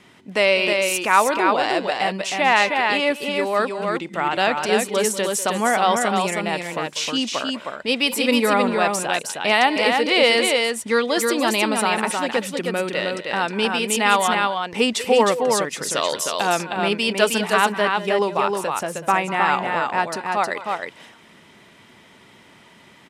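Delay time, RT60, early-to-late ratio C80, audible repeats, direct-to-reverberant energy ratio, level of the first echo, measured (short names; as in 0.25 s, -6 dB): 0.195 s, none, none, 2, none, -14.0 dB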